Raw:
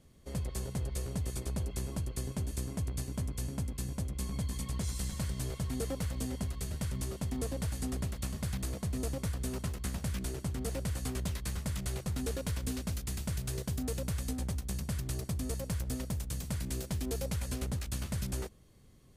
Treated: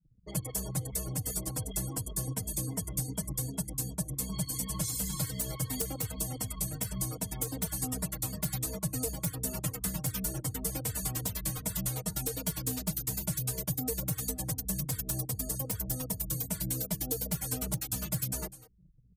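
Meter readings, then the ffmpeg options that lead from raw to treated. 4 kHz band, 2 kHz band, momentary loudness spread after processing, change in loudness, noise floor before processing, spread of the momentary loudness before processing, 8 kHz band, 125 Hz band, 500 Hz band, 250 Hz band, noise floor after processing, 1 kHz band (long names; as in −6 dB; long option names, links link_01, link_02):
+3.0 dB, 0.0 dB, 2 LU, +3.5 dB, −53 dBFS, 2 LU, +8.5 dB, −0.5 dB, −0.5 dB, +0.5 dB, −51 dBFS, +2.5 dB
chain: -filter_complex "[0:a]equalizer=frequency=14000:width=2.7:gain=9.5,aeval=exprs='val(0)+0.000891*(sin(2*PI*60*n/s)+sin(2*PI*2*60*n/s)/2+sin(2*PI*3*60*n/s)/3+sin(2*PI*4*60*n/s)/4+sin(2*PI*5*60*n/s)/5)':channel_layout=same,aecho=1:1:6.4:0.96,afftfilt=real='re*gte(hypot(re,im),0.00562)':imag='im*gte(hypot(re,im),0.00562)':win_size=1024:overlap=0.75,anlmdn=0.00398,highpass=frequency=59:poles=1,aeval=exprs='(mod(11.9*val(0)+1,2)-1)/11.9':channel_layout=same,asplit=2[link_01][link_02];[link_02]aecho=0:1:199:0.0708[link_03];[link_01][link_03]amix=inputs=2:normalize=0,crystalizer=i=3:c=0,equalizer=frequency=810:width=1.9:gain=2,acrossover=split=140|1200[link_04][link_05][link_06];[link_04]acompressor=threshold=-38dB:ratio=4[link_07];[link_05]acompressor=threshold=-39dB:ratio=4[link_08];[link_06]acompressor=threshold=-35dB:ratio=4[link_09];[link_07][link_08][link_09]amix=inputs=3:normalize=0,asplit=2[link_10][link_11];[link_11]adelay=3.1,afreqshift=-2.7[link_12];[link_10][link_12]amix=inputs=2:normalize=1,volume=4.5dB"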